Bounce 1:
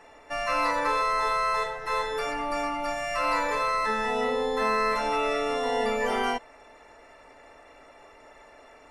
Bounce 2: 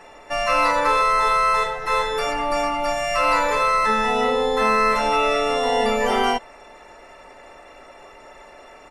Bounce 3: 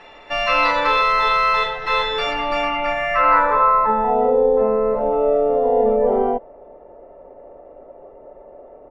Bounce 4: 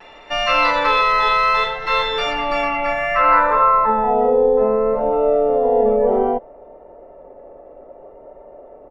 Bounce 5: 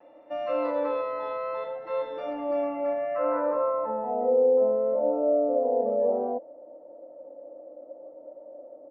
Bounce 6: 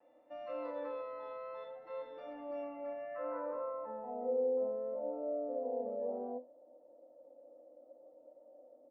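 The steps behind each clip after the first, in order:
comb 5.4 ms, depth 31%; trim +7 dB
low-pass sweep 3.5 kHz -> 550 Hz, 2.45–4.44 s
vibrato 0.63 Hz 25 cents; trim +1 dB
two resonant band-passes 410 Hz, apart 0.8 oct
feedback comb 250 Hz, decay 0.27 s, harmonics all, mix 70%; trim -5 dB

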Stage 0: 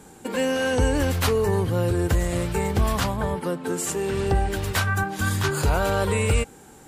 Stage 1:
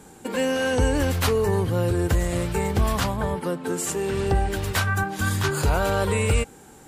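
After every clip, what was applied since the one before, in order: no audible change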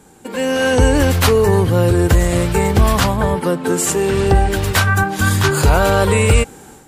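level rider gain up to 12 dB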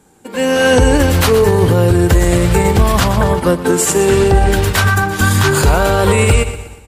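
feedback delay 120 ms, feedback 57%, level -12.5 dB; loudness maximiser +6.5 dB; upward expansion 1.5:1, over -27 dBFS

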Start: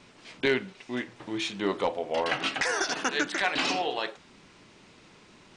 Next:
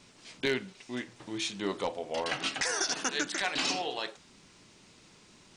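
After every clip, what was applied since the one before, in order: tone controls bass +3 dB, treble +10 dB; trim -5.5 dB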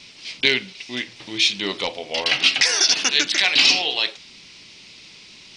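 high-order bell 3.4 kHz +13 dB; trim +4.5 dB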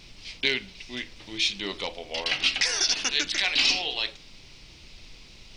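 added noise brown -42 dBFS; trim -7 dB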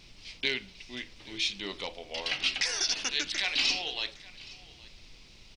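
delay 820 ms -21 dB; trim -5 dB

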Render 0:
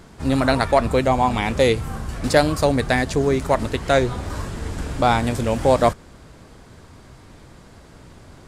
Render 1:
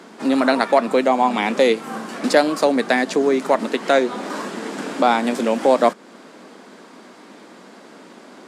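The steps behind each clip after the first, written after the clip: steep high-pass 200 Hz 48 dB/octave; treble shelf 7.9 kHz -9.5 dB; in parallel at +2 dB: compression, threshold -25 dBFS, peak gain reduction 14.5 dB; on the sum: trim -1 dB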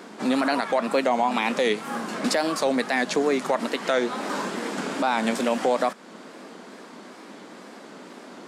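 dynamic bell 340 Hz, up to -6 dB, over -30 dBFS, Q 1; peak limiter -12 dBFS, peak gain reduction 10 dB; wow and flutter 97 cents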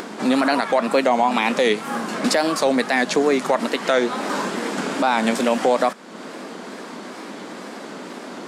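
upward compressor, threshold -32 dBFS; trim +4.5 dB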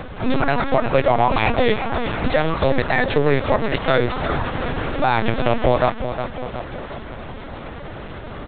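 feedback delay 362 ms, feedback 58%, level -9 dB; LPC vocoder at 8 kHz pitch kept; trim +1 dB

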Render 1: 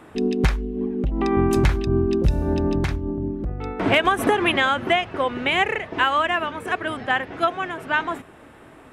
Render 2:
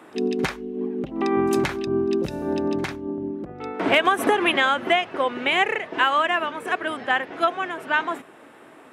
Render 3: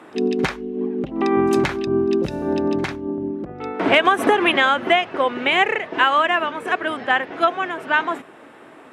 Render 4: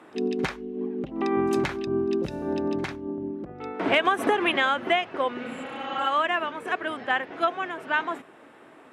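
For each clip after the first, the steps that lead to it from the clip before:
high-pass 240 Hz 12 dB/octave; pre-echo 54 ms -24 dB
treble shelf 9.8 kHz -11 dB; trim +3.5 dB
spectral replace 5.46–6.04 s, 230–7000 Hz both; trim -6.5 dB

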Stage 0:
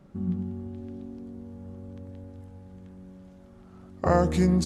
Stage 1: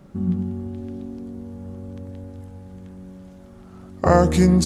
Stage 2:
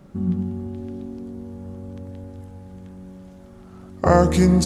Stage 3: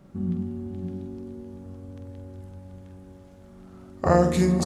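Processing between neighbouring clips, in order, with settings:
treble shelf 6.6 kHz +5.5 dB; trim +6.5 dB
Schroeder reverb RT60 3.7 s, combs from 31 ms, DRR 16 dB
multi-tap echo 46/158/560 ms -7.5/-17.5/-8.5 dB; trim -5 dB

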